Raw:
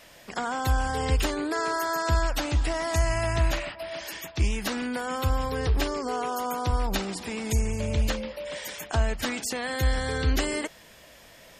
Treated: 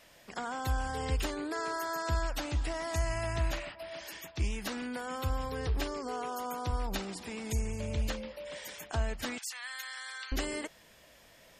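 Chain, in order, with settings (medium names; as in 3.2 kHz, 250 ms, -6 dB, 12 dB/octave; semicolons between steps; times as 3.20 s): 9.38–10.32 s: high-pass 1.1 kHz 24 dB/octave; trim -7.5 dB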